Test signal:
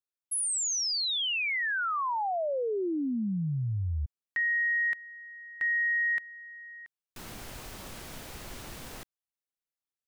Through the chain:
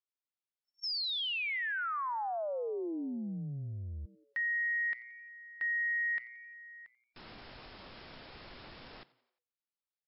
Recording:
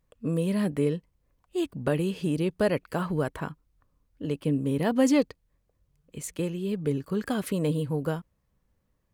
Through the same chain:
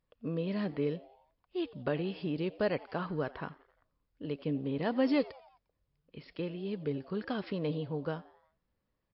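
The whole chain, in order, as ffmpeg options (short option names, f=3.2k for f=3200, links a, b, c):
-filter_complex "[0:a]lowshelf=f=190:g=-6.5,asplit=5[a][b][c][d][e];[b]adelay=88,afreqshift=120,volume=-21dB[f];[c]adelay=176,afreqshift=240,volume=-26.8dB[g];[d]adelay=264,afreqshift=360,volume=-32.7dB[h];[e]adelay=352,afreqshift=480,volume=-38.5dB[i];[a][f][g][h][i]amix=inputs=5:normalize=0,volume=-4.5dB" -ar 12000 -c:a libmp3lame -b:a 40k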